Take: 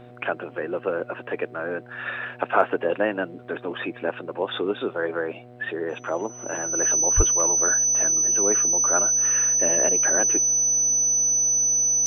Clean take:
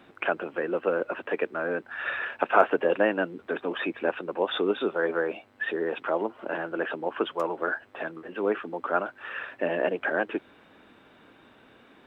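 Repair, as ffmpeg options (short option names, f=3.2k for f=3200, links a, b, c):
-filter_complex "[0:a]bandreject=f=122.3:t=h:w=4,bandreject=f=244.6:t=h:w=4,bandreject=f=366.9:t=h:w=4,bandreject=f=489.2:t=h:w=4,bandreject=f=611.5:t=h:w=4,bandreject=f=733.8:t=h:w=4,bandreject=f=6k:w=30,asplit=3[a][b][c];[a]afade=t=out:st=7.16:d=0.02[d];[b]highpass=f=140:w=0.5412,highpass=f=140:w=1.3066,afade=t=in:st=7.16:d=0.02,afade=t=out:st=7.28:d=0.02[e];[c]afade=t=in:st=7.28:d=0.02[f];[d][e][f]amix=inputs=3:normalize=0"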